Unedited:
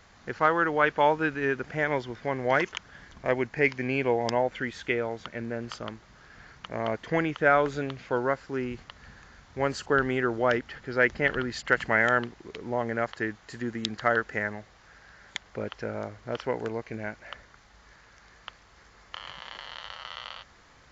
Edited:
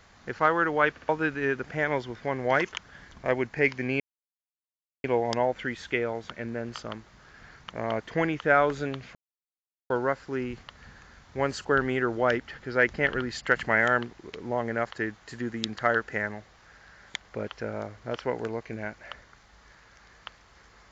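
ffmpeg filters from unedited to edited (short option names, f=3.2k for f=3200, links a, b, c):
-filter_complex "[0:a]asplit=6[a][b][c][d][e][f];[a]atrim=end=0.972[g];[b]atrim=start=0.908:end=0.972[h];[c]atrim=start=0.908:end=0.972[i];[d]atrim=start=1.088:end=4,asetpts=PTS-STARTPTS,afade=t=out:st=2.908:d=0.004:c=hsin,apad=pad_dur=1.04[j];[e]atrim=start=4:end=8.11,asetpts=PTS-STARTPTS,afade=t=in:d=0.004:c=hsin,afade=t=out:st=4.106:d=0.004:c=hsin,apad=pad_dur=0.75[k];[f]atrim=start=8.11,asetpts=PTS-STARTPTS,afade=t=in:d=0.004:c=hsin[l];[g][h]acrossfade=d=0.004:c1=hsin:c2=hsin[m];[m][i]acrossfade=d=0.004:c1=hsin:c2=hsin[n];[j][k][l]concat=n=3:v=0:a=1[o];[n][o]acrossfade=d=0.004:c1=hsin:c2=hsin"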